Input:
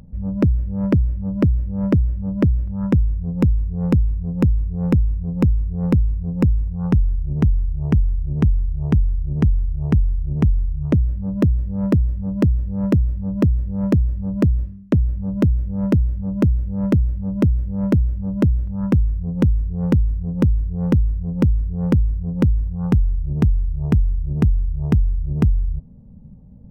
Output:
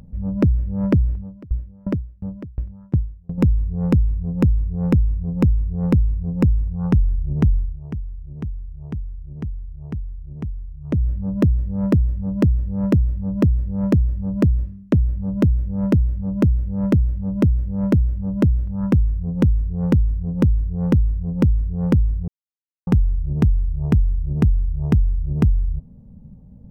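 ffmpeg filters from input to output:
-filter_complex "[0:a]asettb=1/sr,asplit=3[s0][s1][s2];[s0]atrim=end=1.154[s3];[s1]atrim=start=1.15:end=3.38,asetpts=PTS-STARTPTS,afade=t=in:d=0.004:c=qsin,afade=t=out:st=2.226:d=0.004:c=qsin,aeval=exprs='val(0)*pow(10,-30*if(lt(mod(2.8*n/s,1),2*abs(2.8)/1000),1-mod(2.8*n/s,1)/(2*abs(2.8)/1000),(mod(2.8*n/s,1)-2*abs(2.8)/1000)/(1-2*abs(2.8)/1000))/20)':c=same[s4];[s2]atrim=start=3.376[s5];[s3][s4]acrossfade=d=0.004:c1=hsin:c2=qsin[s6];[s6][s5]acrossfade=d=0.004:c1=qsin:c2=hsin,asplit=5[s7][s8][s9][s10][s11];[s7]atrim=end=7.8,asetpts=PTS-STARTPTS,afade=t=out:st=7.56:d=0.24:silence=0.251189[s12];[s8]atrim=start=7.8:end=10.83,asetpts=PTS-STARTPTS,volume=0.251[s13];[s9]atrim=start=10.83:end=22.28,asetpts=PTS-STARTPTS,afade=t=in:d=0.24:silence=0.251189,afade=t=out:st=11.446:d=0.004:c=hsin[s14];[s10]atrim=start=22.28:end=22.87,asetpts=PTS-STARTPTS,volume=0[s15];[s11]atrim=start=22.87,asetpts=PTS-STARTPTS,afade=t=in:d=0.004:c=hsin[s16];[s12][s13][s14][s15][s16]concat=n=5:v=0:a=1"

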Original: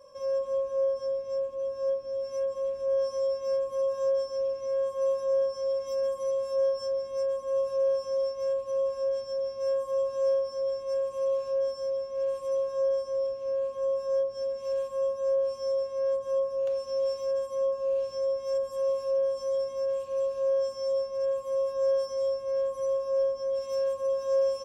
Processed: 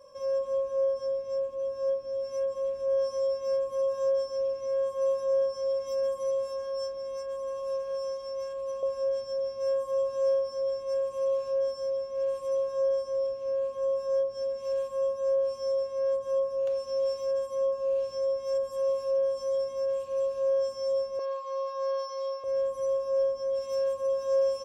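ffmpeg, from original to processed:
-filter_complex "[0:a]asettb=1/sr,asplit=3[s0][s1][s2];[s0]atrim=end=6.464[s3];[s1]atrim=start=6.46:end=8.83,asetpts=PTS-STARTPTS,afade=t=in:d=0.004:c=qsin,afade=t=out:st=2.366:d=0.004:c=qsin,bandreject=f=60:t=h:w=6,bandreject=f=120:t=h:w=6,bandreject=f=180:t=h:w=6,bandreject=f=240:t=h:w=6,bandreject=f=300:t=h:w=6,bandreject=f=360:t=h:w=6,bandreject=f=420:t=h:w=6,bandreject=f=480:t=h:w=6,bandreject=f=540:t=h:w=6,bandreject=f=600:t=h:w=6[s4];[s2]atrim=start=8.826[s5];[s3][s4]acrossfade=d=0.004:c1=hsin:c2=qsin[s6];[s6][s5]acrossfade=d=0.004:c1=qsin:c2=hsin,asettb=1/sr,asplit=3[s7][s8][s9];[s7]atrim=end=21.194[s10];[s8]atrim=start=21.19:end=22.44,asetpts=PTS-STARTPTS,afade=t=in:d=0.004:c=qsin,afade=t=out:st=1.246:d=0.004:c=qsin,highpass=f=390:w=0.5412,highpass=f=390:w=1.3066,equalizer=f=470:t=q:w=4:g=-7,equalizer=f=690:t=q:w=4:g=-9,equalizer=f=1100:t=q:w=4:g=8,equalizer=f=2300:t=q:w=4:g=3,equalizer=f=4300:t=q:w=4:g=10,lowpass=f=5800:w=0.5412,lowpass=f=5800:w=1.3066[s11];[s9]atrim=start=22.436[s12];[s10][s11]acrossfade=d=0.004:c1=hsin:c2=qsin[s13];[s13][s12]acrossfade=d=0.004:c1=qsin:c2=hsin"

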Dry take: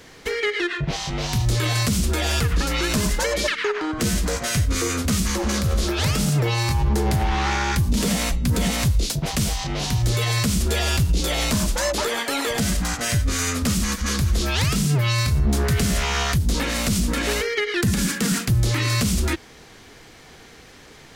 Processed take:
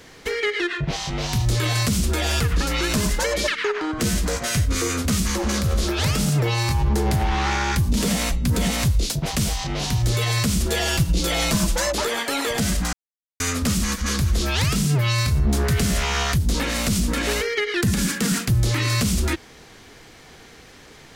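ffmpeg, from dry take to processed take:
-filter_complex "[0:a]asettb=1/sr,asplit=3[s0][s1][s2];[s0]atrim=end=10.654[s3];[s1]atrim=start=10.65:end=11.87,asetpts=PTS-STARTPTS,afade=t=in:d=0.004:c=qsin,afade=t=out:st=1.216:d=0.004:c=qsin,aecho=1:1:6:0.53,atrim=end_sample=53802[s4];[s2]atrim=start=11.866[s5];[s3][s4]acrossfade=d=0.004:c1=hsin:c2=qsin[s6];[s6][s5]acrossfade=d=0.004:c1=qsin:c2=hsin,asplit=3[s7][s8][s9];[s7]atrim=end=12.93,asetpts=PTS-STARTPTS,afade=t=out:st=12.926:d=0.004:c=hsin[s10];[s8]atrim=start=12.93:end=13.4,asetpts=PTS-STARTPTS,volume=0[s11];[s9]atrim=start=13.4,asetpts=PTS-STARTPTS,afade=t=in:d=0.004:c=hsin[s12];[s10][s11][s12]concat=n=3:v=0:a=1"

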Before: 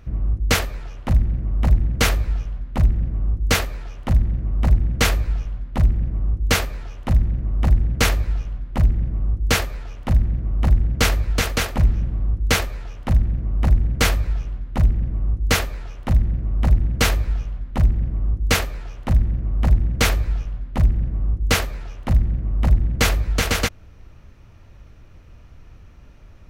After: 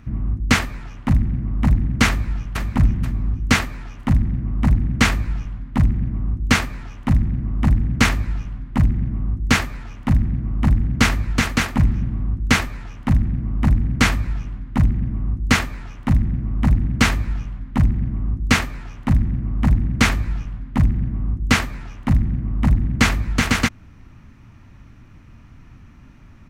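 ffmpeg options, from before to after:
-filter_complex "[0:a]asplit=2[s0][s1];[s1]afade=t=in:st=2.07:d=0.01,afade=t=out:st=2.71:d=0.01,aecho=0:1:480|960|1440|1920:0.707946|0.212384|0.0637151|0.0191145[s2];[s0][s2]amix=inputs=2:normalize=0,acrossover=split=8200[s3][s4];[s4]acompressor=threshold=0.0158:ratio=4:attack=1:release=60[s5];[s3][s5]amix=inputs=2:normalize=0,equalizer=f=125:t=o:w=1:g=6,equalizer=f=250:t=o:w=1:g=12,equalizer=f=500:t=o:w=1:g=-7,equalizer=f=1000:t=o:w=1:g=6,equalizer=f=2000:t=o:w=1:g=6,equalizer=f=8000:t=o:w=1:g=4,volume=0.708"

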